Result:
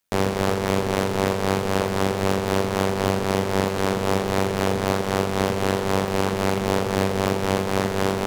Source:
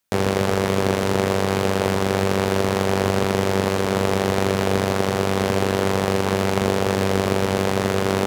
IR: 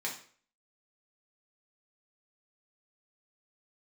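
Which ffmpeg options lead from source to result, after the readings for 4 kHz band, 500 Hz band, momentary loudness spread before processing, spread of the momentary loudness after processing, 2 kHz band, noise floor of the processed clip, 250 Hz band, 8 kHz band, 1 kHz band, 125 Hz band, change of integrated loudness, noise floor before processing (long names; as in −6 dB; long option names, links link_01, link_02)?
−2.5 dB, −2.5 dB, 1 LU, 1 LU, −2.5 dB, −26 dBFS, −2.0 dB, −2.0 dB, −1.0 dB, −2.5 dB, −2.0 dB, −23 dBFS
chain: -af "aeval=exprs='0.794*(cos(1*acos(clip(val(0)/0.794,-1,1)))-cos(1*PI/2))+0.0794*(cos(5*acos(clip(val(0)/0.794,-1,1)))-cos(5*PI/2))+0.0891*(cos(6*acos(clip(val(0)/0.794,-1,1)))-cos(6*PI/2))':channel_layout=same,tremolo=f=93:d=0.571,volume=-2.5dB"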